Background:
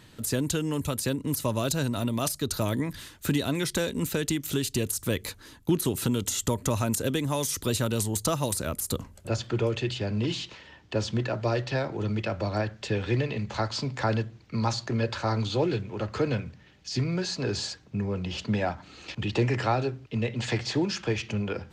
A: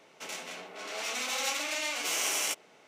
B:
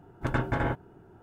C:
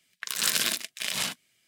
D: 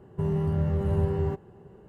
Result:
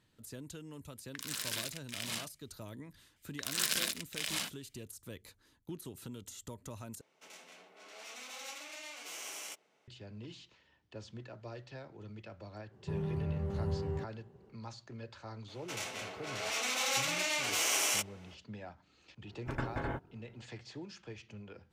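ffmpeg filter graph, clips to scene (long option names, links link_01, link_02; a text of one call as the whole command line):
ffmpeg -i bed.wav -i cue0.wav -i cue1.wav -i cue2.wav -i cue3.wav -filter_complex "[3:a]asplit=2[link_01][link_02];[1:a]asplit=2[link_03][link_04];[0:a]volume=-19.5dB[link_05];[link_01]alimiter=limit=-11.5dB:level=0:latency=1:release=55[link_06];[4:a]highpass=49[link_07];[link_05]asplit=2[link_08][link_09];[link_08]atrim=end=7.014[link_10];[link_03]atrim=end=2.87,asetpts=PTS-STARTPTS,volume=-14dB[link_11];[link_09]atrim=start=9.876[link_12];[link_06]atrim=end=1.67,asetpts=PTS-STARTPTS,volume=-10dB,afade=type=in:duration=0.1,afade=type=out:start_time=1.57:duration=0.1,adelay=920[link_13];[link_02]atrim=end=1.67,asetpts=PTS-STARTPTS,volume=-7dB,afade=type=in:duration=0.004:curve=hsin,afade=type=out:start_time=1.666:duration=0.004:curve=hsin,adelay=3160[link_14];[link_07]atrim=end=1.88,asetpts=PTS-STARTPTS,volume=-9.5dB,afade=type=in:duration=0.05,afade=type=out:start_time=1.83:duration=0.05,adelay=12690[link_15];[link_04]atrim=end=2.87,asetpts=PTS-STARTPTS,volume=-0.5dB,afade=type=in:duration=0.004:curve=hsin,afade=type=out:start_time=2.866:duration=0.004:curve=hsin,adelay=15480[link_16];[2:a]atrim=end=1.22,asetpts=PTS-STARTPTS,volume=-9dB,afade=type=in:duration=0.004:curve=hsin,afade=type=out:start_time=1.216:duration=0.004:curve=hsin,adelay=848484S[link_17];[link_10][link_11]acrossfade=duration=0.004:curve1=hsin:curve2=hsin[link_18];[link_18][link_12]acrossfade=duration=0.004:curve1=hsin:curve2=hsin[link_19];[link_19][link_13][link_14][link_15][link_16][link_17]amix=inputs=6:normalize=0" out.wav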